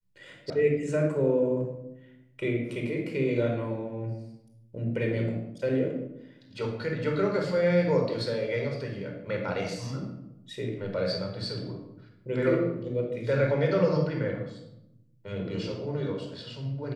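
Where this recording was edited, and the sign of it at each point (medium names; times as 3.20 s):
0.50 s: sound stops dead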